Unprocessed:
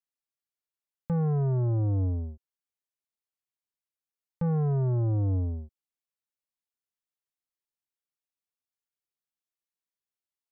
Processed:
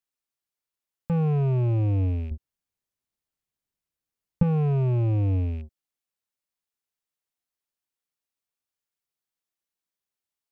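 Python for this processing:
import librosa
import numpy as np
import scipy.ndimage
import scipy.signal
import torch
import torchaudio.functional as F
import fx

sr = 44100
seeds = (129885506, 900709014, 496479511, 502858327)

y = fx.rattle_buzz(x, sr, strikes_db=-35.0, level_db=-45.0)
y = fx.low_shelf(y, sr, hz=270.0, db=11.5, at=(2.31, 4.43))
y = F.gain(torch.from_numpy(y), 3.0).numpy()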